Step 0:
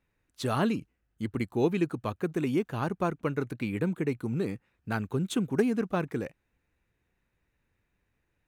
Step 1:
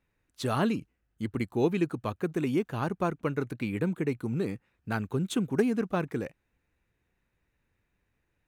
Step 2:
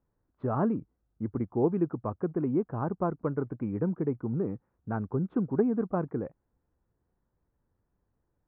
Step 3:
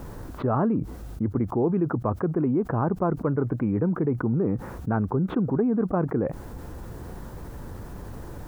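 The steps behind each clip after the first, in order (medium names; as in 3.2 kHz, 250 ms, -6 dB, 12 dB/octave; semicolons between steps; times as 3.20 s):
no audible change
low-pass 1.2 kHz 24 dB/octave
level flattener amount 70%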